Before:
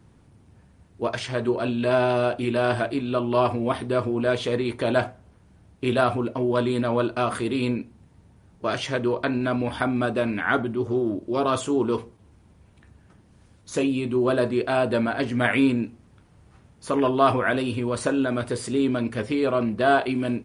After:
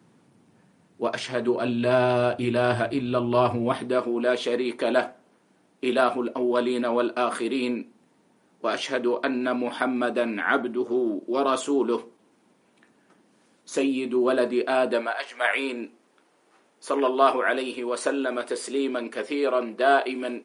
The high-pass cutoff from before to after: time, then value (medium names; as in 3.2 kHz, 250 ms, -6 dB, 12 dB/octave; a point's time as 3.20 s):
high-pass 24 dB/octave
1.51 s 160 Hz
2.18 s 62 Hz
3.42 s 62 Hz
4.03 s 230 Hz
14.90 s 230 Hz
15.23 s 750 Hz
15.82 s 310 Hz